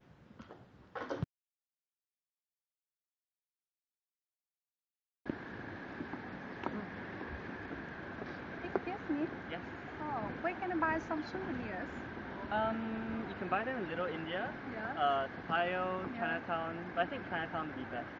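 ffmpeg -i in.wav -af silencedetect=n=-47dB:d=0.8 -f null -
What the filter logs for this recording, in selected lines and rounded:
silence_start: 1.24
silence_end: 5.26 | silence_duration: 4.02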